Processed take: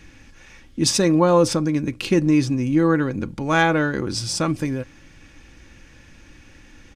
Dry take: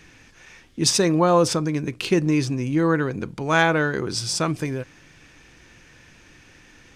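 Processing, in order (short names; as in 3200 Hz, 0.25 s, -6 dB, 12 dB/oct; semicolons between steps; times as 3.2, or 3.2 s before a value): low shelf 200 Hz +9 dB; comb 3.6 ms, depth 38%; gain -1 dB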